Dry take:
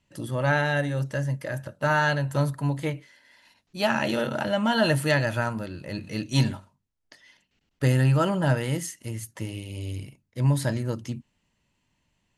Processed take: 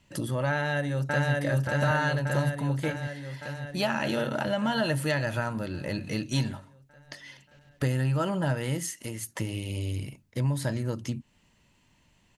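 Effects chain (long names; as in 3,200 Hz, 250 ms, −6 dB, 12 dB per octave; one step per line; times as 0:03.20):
downward compressor 2.5 to 1, threshold −39 dBFS, peak gain reduction 15 dB
0:00.51–0:01.33: delay throw 580 ms, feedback 70%, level −0.5 dB
0:08.93–0:09.40: parametric band 100 Hz −8 dB 1.8 octaves
level +8 dB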